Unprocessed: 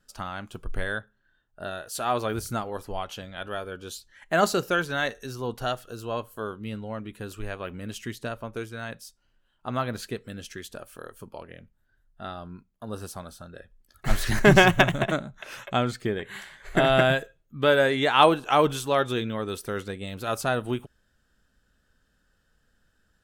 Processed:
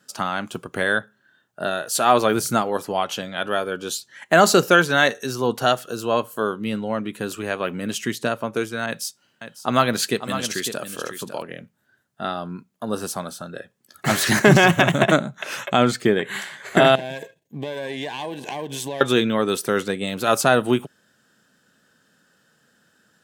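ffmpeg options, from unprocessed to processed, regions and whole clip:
-filter_complex "[0:a]asettb=1/sr,asplit=3[s0][s1][s2];[s0]atrim=end=8.864[s3];[s1]atrim=start=8.86:end=11.42,asetpts=PTS-STARTPTS,afade=t=in:d=0.004:c=qsin,afade=t=out:st=2.556:d=0.004:c=qsin,aecho=1:1:551:0.316,atrim=end_sample=112896,adynamicequalizer=threshold=0.00447:dfrequency=1900:dqfactor=0.7:tfrequency=1900:tqfactor=0.7:attack=5:release=100:ratio=0.375:range=2.5:mode=boostabove:tftype=highshelf[s4];[s2]atrim=start=11.416[s5];[s3][s4]acrossfade=d=0.004:c1=hsin:c2=qsin[s6];[s6][s5]acrossfade=d=0.004:c1=qsin:c2=hsin,asettb=1/sr,asplit=3[s7][s8][s9];[s7]atrim=end=16.954[s10];[s8]atrim=start=16.95:end=19.01,asetpts=PTS-STARTPTS,afade=t=in:d=0.004:c=qsin,afade=t=out:st=2.056:d=0.004:c=qsin,aeval=exprs='if(lt(val(0),0),0.447*val(0),val(0))':c=same,acompressor=threshold=0.0224:ratio=20:attack=3.2:release=140:knee=1:detection=peak,asuperstop=centerf=1300:order=4:qfactor=2.3[s11];[s9]atrim=start=19.006[s12];[s10][s11]acrossfade=d=0.004:c1=hsin:c2=qsin[s13];[s13][s12]acrossfade=d=0.004:c1=qsin:c2=hsin,highpass=f=140:w=0.5412,highpass=f=140:w=1.3066,equalizer=f=7100:t=o:w=0.77:g=2.5,alimiter=level_in=3.55:limit=0.891:release=50:level=0:latency=1,volume=0.891"

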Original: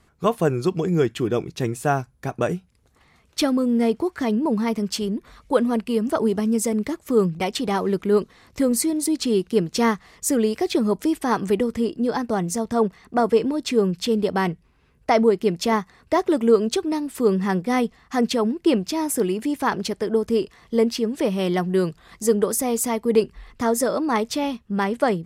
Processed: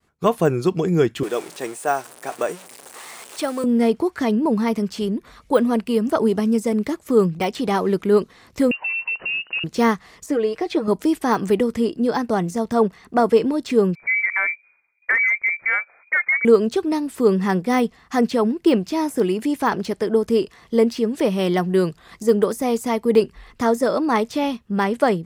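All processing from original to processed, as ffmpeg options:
-filter_complex "[0:a]asettb=1/sr,asplit=3[s0][s1][s2];[s0]atrim=end=1.234[s3];[s1]atrim=start=1.23:end=3.64,asetpts=PTS-STARTPTS,afade=t=in:d=0.004:c=qsin,afade=t=out:st=2.406:d=0.004:c=qsin,aeval=exprs='val(0)+0.5*0.0224*sgn(val(0))':c=same,highpass=500,equalizer=f=8700:t=o:w=0.57:g=11[s4];[s2]atrim=start=3.636[s5];[s3][s4]acrossfade=d=0.004:c1=hsin:c2=qsin[s6];[s6][s5]acrossfade=d=0.004:c1=qsin:c2=hsin,asettb=1/sr,asplit=3[s7][s8][s9];[s7]atrim=end=8.714[s10];[s8]atrim=start=8.71:end=9.64,asetpts=PTS-STARTPTS,afade=t=in:d=0.004:c=qsin,afade=t=out:st=0.926:d=0.004:c=qsin,acompressor=threshold=0.0501:ratio=5:attack=3.2:release=140:knee=1:detection=peak,equalizer=f=1500:t=o:w=2.3:g=6.5,lowpass=f=2600:t=q:w=0.5098,lowpass=f=2600:t=q:w=0.6013,lowpass=f=2600:t=q:w=0.9,lowpass=f=2600:t=q:w=2.563,afreqshift=-3000[s11];[s9]atrim=start=9.636[s12];[s10][s11]acrossfade=d=0.004:c1=hsin:c2=qsin[s13];[s13][s12]acrossfade=d=0.004:c1=qsin:c2=hsin,asettb=1/sr,asplit=3[s14][s15][s16];[s14]atrim=end=10.264[s17];[s15]atrim=start=10.26:end=10.88,asetpts=PTS-STARTPTS,afade=t=in:d=0.004:c=qsin,afade=t=out:st=0.616:d=0.004:c=qsin,lowpass=f=1700:p=1,equalizer=f=170:w=0.69:g=-7.5,aecho=1:1:6.4:0.57,atrim=end_sample=27342[s18];[s16]atrim=start=10.876[s19];[s17][s18]acrossfade=d=0.004:c1=hsin:c2=qsin[s20];[s20][s19]acrossfade=d=0.004:c1=qsin:c2=hsin,asettb=1/sr,asplit=3[s21][s22][s23];[s21]atrim=end=13.954[s24];[s22]atrim=start=13.95:end=16.45,asetpts=PTS-STARTPTS,afade=t=in:d=0.004:c=qsin,afade=t=out:st=2.496:d=0.004:c=qsin,lowpass=f=2100:t=q:w=0.5098,lowpass=f=2100:t=q:w=0.6013,lowpass=f=2100:t=q:w=0.9,lowpass=f=2100:t=q:w=2.563,afreqshift=-2500,equalizer=f=290:w=0.33:g=-8.5[s25];[s23]atrim=start=16.446[s26];[s24][s25]acrossfade=d=0.004:c1=hsin:c2=qsin[s27];[s27][s26]acrossfade=d=0.004:c1=qsin:c2=hsin,deesser=0.75,agate=range=0.0224:threshold=0.00224:ratio=3:detection=peak,lowshelf=f=87:g=-6.5,volume=1.41"

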